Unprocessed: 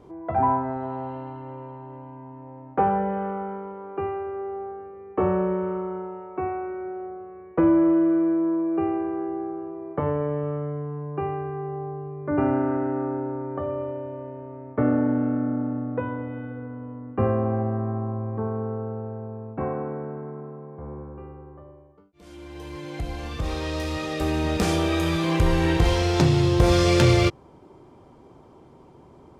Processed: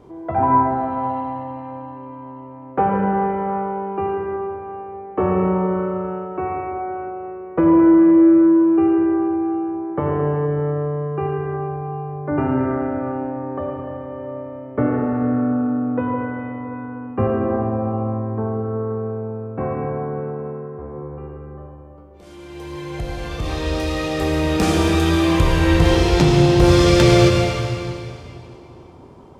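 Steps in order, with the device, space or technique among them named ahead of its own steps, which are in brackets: stairwell (reverb RT60 2.6 s, pre-delay 72 ms, DRR 0.5 dB); gain +3 dB

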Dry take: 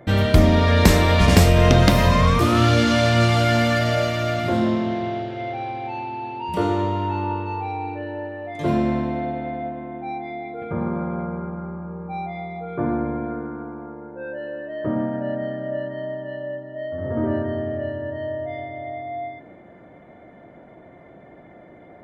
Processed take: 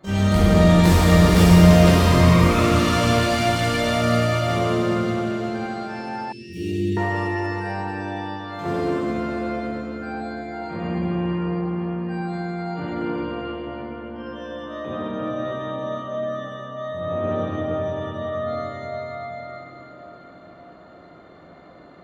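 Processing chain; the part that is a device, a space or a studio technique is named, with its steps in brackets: shimmer-style reverb (harmoniser +12 st -5 dB; reverb RT60 4.1 s, pre-delay 5 ms, DRR -8.5 dB); 6.32–6.97 elliptic band-stop 370–2600 Hz, stop band 80 dB; gain -11.5 dB

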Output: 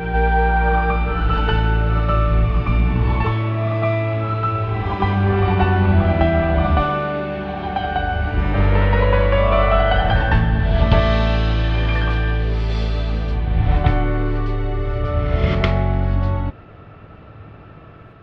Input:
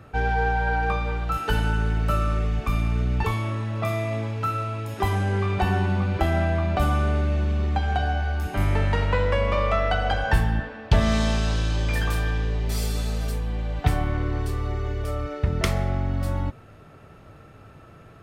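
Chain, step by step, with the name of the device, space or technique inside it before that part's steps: LPF 3800 Hz 24 dB/oct; reverse reverb (reverse; reverb RT60 1.4 s, pre-delay 94 ms, DRR 2 dB; reverse); gain +4 dB

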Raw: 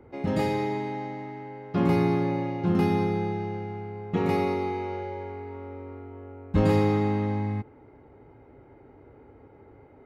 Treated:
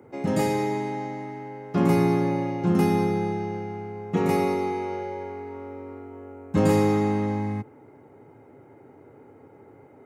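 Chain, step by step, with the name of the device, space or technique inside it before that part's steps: budget condenser microphone (HPF 110 Hz 24 dB/oct; resonant high shelf 5400 Hz +8 dB, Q 1.5); gain +2.5 dB

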